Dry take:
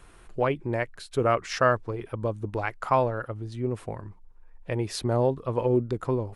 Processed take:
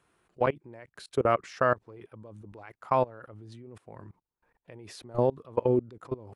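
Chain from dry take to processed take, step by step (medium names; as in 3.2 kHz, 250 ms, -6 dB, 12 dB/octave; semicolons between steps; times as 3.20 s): high-pass 120 Hz 12 dB/octave; treble shelf 2.9 kHz -2.5 dB; level held to a coarse grid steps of 24 dB; trim +1.5 dB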